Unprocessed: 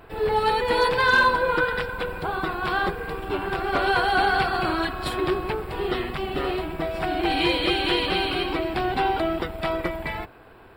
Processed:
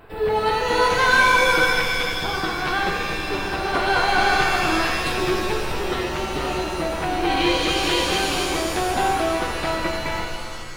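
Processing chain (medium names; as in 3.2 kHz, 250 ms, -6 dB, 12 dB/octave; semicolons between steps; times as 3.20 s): pitch-shifted reverb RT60 1.9 s, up +7 st, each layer -2 dB, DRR 3.5 dB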